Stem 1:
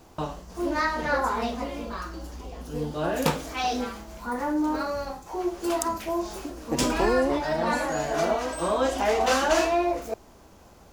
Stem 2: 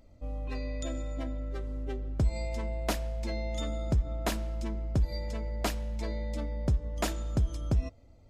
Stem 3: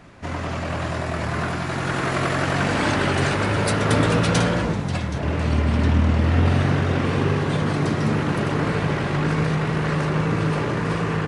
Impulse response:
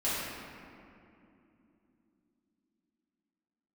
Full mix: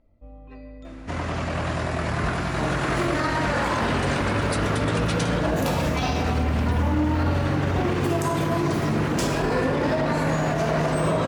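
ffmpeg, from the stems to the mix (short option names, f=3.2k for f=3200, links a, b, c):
-filter_complex "[0:a]adelay=2400,volume=-4dB,asplit=2[a][b];[b]volume=-3dB[c];[1:a]lowpass=2.4k,volume=-6.5dB,asplit=2[d][e];[e]volume=-16dB[f];[2:a]adelay=850,volume=-0.5dB[g];[3:a]atrim=start_sample=2205[h];[c][f]amix=inputs=2:normalize=0[i];[i][h]afir=irnorm=-1:irlink=0[j];[a][d][g][j]amix=inputs=4:normalize=0,alimiter=limit=-14.5dB:level=0:latency=1:release=57"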